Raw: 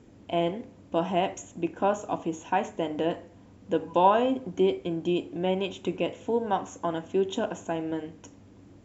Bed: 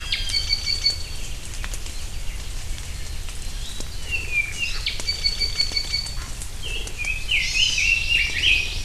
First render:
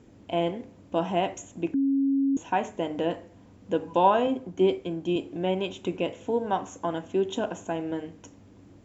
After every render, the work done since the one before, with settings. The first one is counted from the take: 1.74–2.37 s: bleep 274 Hz -20.5 dBFS; 4.27–5.16 s: three bands expanded up and down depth 40%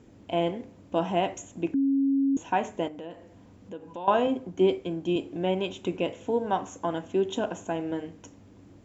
2.88–4.08 s: compression 2:1, threshold -46 dBFS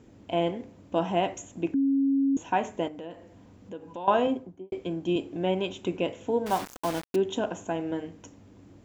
4.26–4.72 s: studio fade out; 6.46–7.16 s: word length cut 6-bit, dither none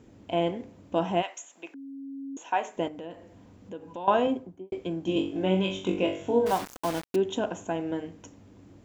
1.21–2.76 s: high-pass 1.1 kHz -> 450 Hz; 5.04–6.52 s: flutter echo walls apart 3.6 m, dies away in 0.38 s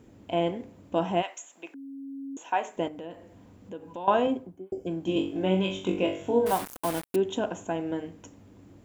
4.60–4.85 s: spectral replace 830–4700 Hz before; resonant high shelf 7.9 kHz +6 dB, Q 1.5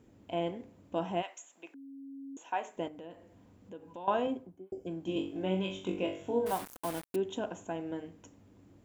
trim -7 dB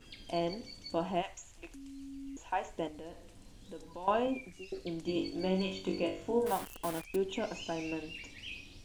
add bed -27 dB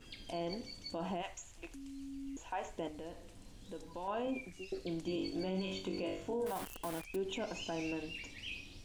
peak limiter -29.5 dBFS, peak gain reduction 12 dB

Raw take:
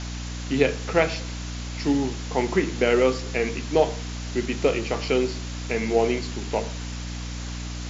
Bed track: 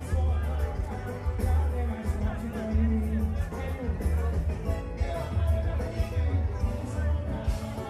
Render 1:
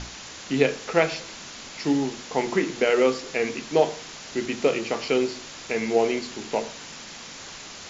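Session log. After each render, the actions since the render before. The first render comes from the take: hum notches 60/120/180/240/300/360 Hz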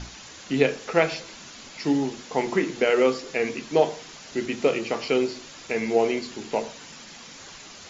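noise reduction 6 dB, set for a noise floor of -41 dBFS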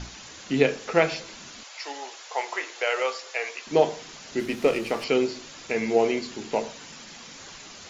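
1.63–3.67 s: high-pass 600 Hz 24 dB/octave; 4.39–5.04 s: sliding maximum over 3 samples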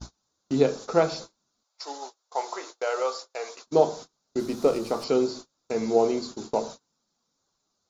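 gate -37 dBFS, range -32 dB; high-order bell 2.3 kHz -14 dB 1.1 oct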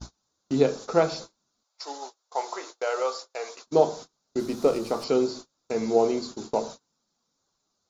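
no audible change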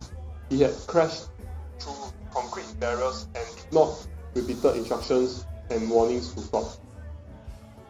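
add bed track -13 dB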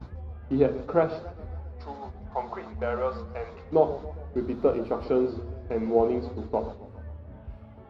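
distance through air 460 m; modulated delay 137 ms, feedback 55%, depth 177 cents, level -16.5 dB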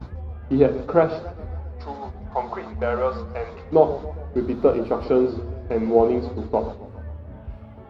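trim +5.5 dB

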